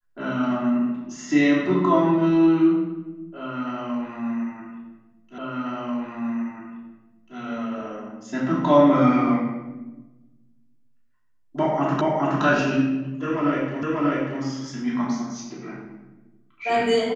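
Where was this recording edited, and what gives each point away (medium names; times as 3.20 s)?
5.38 s: repeat of the last 1.99 s
12.01 s: repeat of the last 0.42 s
13.83 s: repeat of the last 0.59 s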